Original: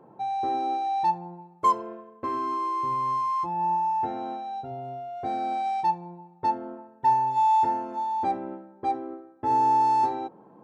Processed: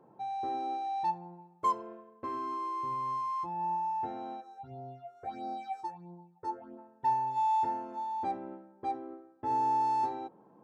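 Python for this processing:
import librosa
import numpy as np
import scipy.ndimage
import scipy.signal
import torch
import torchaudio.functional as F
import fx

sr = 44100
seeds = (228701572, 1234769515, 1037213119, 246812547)

y = fx.phaser_stages(x, sr, stages=6, low_hz=170.0, high_hz=2700.0, hz=1.5, feedback_pct=45, at=(4.4, 6.77), fade=0.02)
y = y * 10.0 ** (-7.5 / 20.0)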